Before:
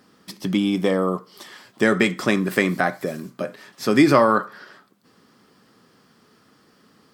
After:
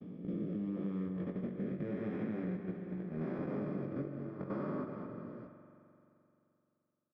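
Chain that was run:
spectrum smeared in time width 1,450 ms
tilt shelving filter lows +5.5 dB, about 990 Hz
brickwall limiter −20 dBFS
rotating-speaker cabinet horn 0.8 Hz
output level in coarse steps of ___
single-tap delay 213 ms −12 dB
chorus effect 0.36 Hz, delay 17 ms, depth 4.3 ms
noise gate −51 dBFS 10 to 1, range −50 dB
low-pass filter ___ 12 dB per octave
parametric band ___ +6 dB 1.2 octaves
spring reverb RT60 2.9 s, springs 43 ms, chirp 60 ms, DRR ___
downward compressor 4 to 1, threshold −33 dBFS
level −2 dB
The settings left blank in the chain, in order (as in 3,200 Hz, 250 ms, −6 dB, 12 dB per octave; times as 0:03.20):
15 dB, 2,400 Hz, 140 Hz, 9 dB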